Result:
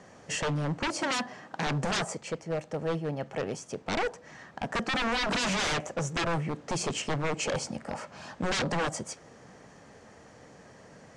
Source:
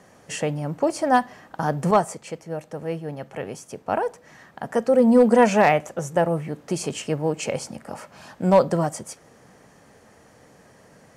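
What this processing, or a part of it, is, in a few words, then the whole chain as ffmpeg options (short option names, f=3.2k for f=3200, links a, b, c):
synthesiser wavefolder: -filter_complex "[0:a]aeval=exprs='0.0668*(abs(mod(val(0)/0.0668+3,4)-2)-1)':c=same,lowpass=f=7.9k:w=0.5412,lowpass=f=7.9k:w=1.3066,asettb=1/sr,asplit=3[a][b][c];[a]atrim=end=0.874[d];[b]atrim=start=0.87:end=1.67,asetpts=PTS-STARTPTS,afade=t=in:d=0.004:c=qsin,afade=t=out:st=0.796:d=0.004:c=qsin,highpass=f=110:w=0.5412,highpass=f=110:w=1.3066[e];[c]atrim=start=1.666[f];[d][e]acrossfade=d=0.004:c1=hsin:c2=qsin[g];[g][f]acrossfade=d=0.004:c1=qsin:c2=hsin"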